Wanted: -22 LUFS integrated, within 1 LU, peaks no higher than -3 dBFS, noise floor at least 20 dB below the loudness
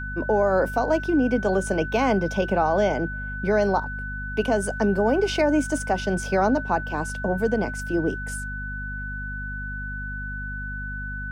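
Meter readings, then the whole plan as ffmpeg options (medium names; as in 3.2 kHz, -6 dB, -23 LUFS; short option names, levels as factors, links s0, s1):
hum 50 Hz; highest harmonic 250 Hz; hum level -31 dBFS; steady tone 1.5 kHz; tone level -32 dBFS; loudness -24.5 LUFS; peak level -9.5 dBFS; loudness target -22.0 LUFS
-> -af "bandreject=f=50:t=h:w=4,bandreject=f=100:t=h:w=4,bandreject=f=150:t=h:w=4,bandreject=f=200:t=h:w=4,bandreject=f=250:t=h:w=4"
-af "bandreject=f=1500:w=30"
-af "volume=1.33"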